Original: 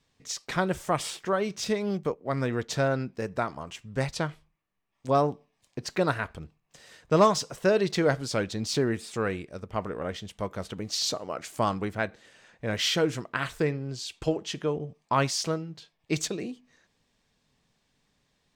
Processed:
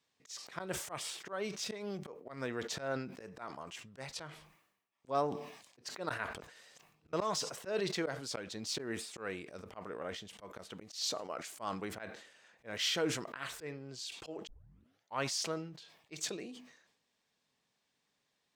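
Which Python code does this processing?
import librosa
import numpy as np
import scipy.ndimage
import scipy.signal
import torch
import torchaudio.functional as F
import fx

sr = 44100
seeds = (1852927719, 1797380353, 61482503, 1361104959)

y = fx.edit(x, sr, fx.reverse_span(start_s=6.39, length_s=0.74),
    fx.tape_start(start_s=14.47, length_s=0.73), tone=tone)
y = fx.highpass(y, sr, hz=400.0, slope=6)
y = fx.auto_swell(y, sr, attack_ms=131.0)
y = fx.sustainer(y, sr, db_per_s=72.0)
y = y * 10.0 ** (-6.5 / 20.0)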